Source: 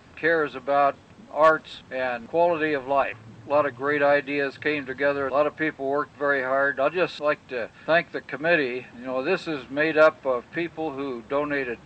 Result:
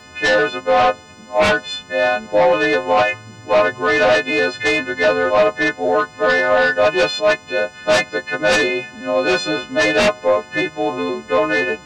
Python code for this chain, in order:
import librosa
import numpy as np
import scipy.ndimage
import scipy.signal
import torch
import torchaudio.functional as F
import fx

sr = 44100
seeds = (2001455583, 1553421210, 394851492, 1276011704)

y = fx.freq_snap(x, sr, grid_st=3)
y = fx.fold_sine(y, sr, drive_db=11, ceiling_db=-4.5)
y = fx.dynamic_eq(y, sr, hz=600.0, q=1.1, threshold_db=-21.0, ratio=4.0, max_db=5)
y = y * librosa.db_to_amplitude(-8.0)